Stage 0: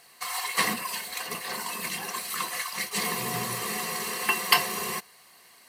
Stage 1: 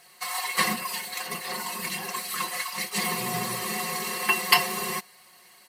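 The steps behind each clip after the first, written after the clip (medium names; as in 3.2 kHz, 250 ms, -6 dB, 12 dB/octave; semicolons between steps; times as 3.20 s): comb 5.5 ms, depth 72%; trim -1 dB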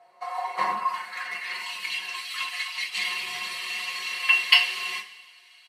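resampled via 32 kHz; band-pass sweep 690 Hz -> 2.9 kHz, 0.47–1.70 s; two-slope reverb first 0.29 s, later 1.6 s, from -17 dB, DRR 0.5 dB; trim +5 dB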